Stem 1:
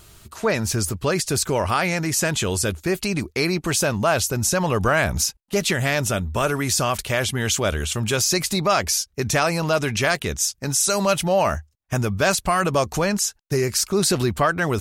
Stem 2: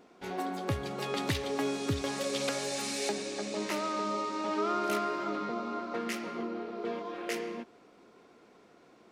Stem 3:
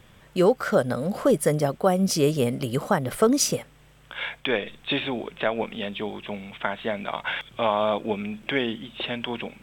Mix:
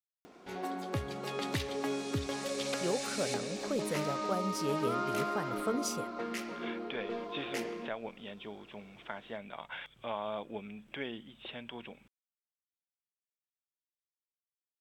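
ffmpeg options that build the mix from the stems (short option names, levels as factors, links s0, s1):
-filter_complex "[1:a]adelay=250,volume=0.708[s0];[2:a]adelay=2450,volume=0.188[s1];[s0][s1]amix=inputs=2:normalize=0,acompressor=mode=upward:threshold=0.00398:ratio=2.5"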